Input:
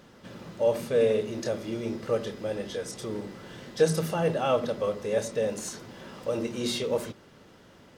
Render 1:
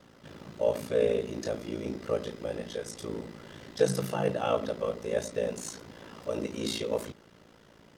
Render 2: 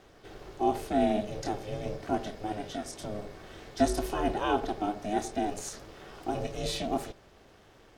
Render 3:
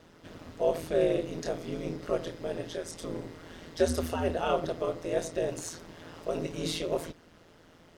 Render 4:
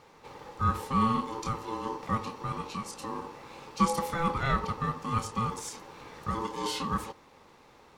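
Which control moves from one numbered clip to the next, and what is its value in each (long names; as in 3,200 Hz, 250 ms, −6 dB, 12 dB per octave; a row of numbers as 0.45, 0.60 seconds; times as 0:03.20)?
ring modulation, frequency: 28, 210, 83, 670 Hertz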